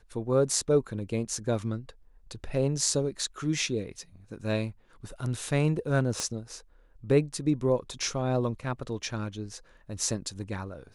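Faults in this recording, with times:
0:06.20: click −16 dBFS

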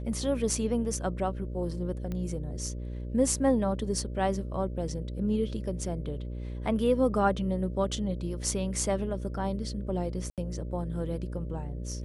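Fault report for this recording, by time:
mains buzz 60 Hz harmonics 10 −36 dBFS
0:02.12: click −23 dBFS
0:10.30–0:10.38: drop-out 77 ms

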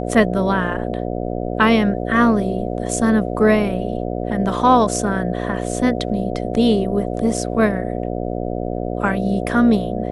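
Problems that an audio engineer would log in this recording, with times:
mains buzz 60 Hz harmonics 12 −24 dBFS

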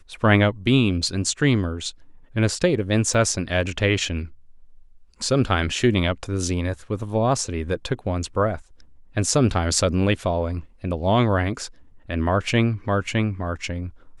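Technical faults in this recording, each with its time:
0:03.14: drop-out 3.8 ms

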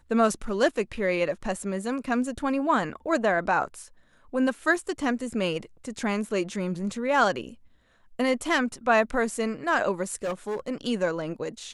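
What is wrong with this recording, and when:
0:10.23–0:10.60: clipping −25.5 dBFS

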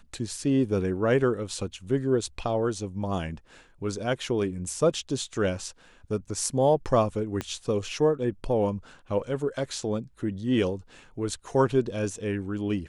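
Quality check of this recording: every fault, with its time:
0:07.41: click −16 dBFS

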